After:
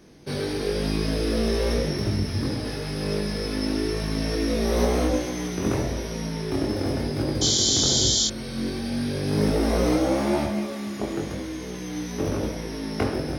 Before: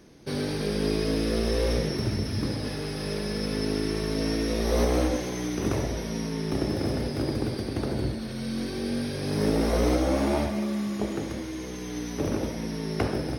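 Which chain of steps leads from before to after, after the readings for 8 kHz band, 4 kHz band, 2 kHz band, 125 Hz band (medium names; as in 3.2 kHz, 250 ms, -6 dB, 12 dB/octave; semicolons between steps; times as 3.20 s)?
+12.5 dB, +9.0 dB, +2.0 dB, +2.0 dB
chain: painted sound noise, 7.41–8.28 s, 3–7.4 kHz -24 dBFS; chorus 0.96 Hz, delay 19.5 ms, depth 3.1 ms; trim +5 dB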